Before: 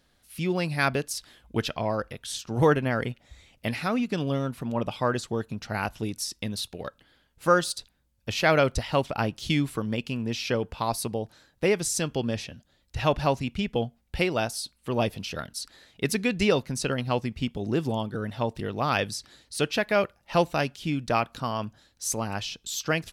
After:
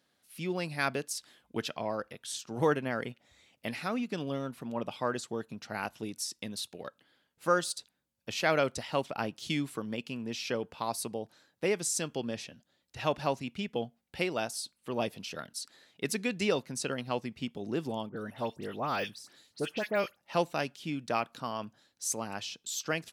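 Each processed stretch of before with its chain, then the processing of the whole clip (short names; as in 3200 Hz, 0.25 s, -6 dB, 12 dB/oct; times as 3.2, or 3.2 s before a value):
18.09–20.17 high shelf 12000 Hz +9.5 dB + dispersion highs, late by 70 ms, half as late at 2400 Hz + de-esser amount 90%
whole clip: HPF 170 Hz 12 dB/oct; dynamic EQ 7700 Hz, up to +4 dB, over -47 dBFS, Q 1.6; gain -6 dB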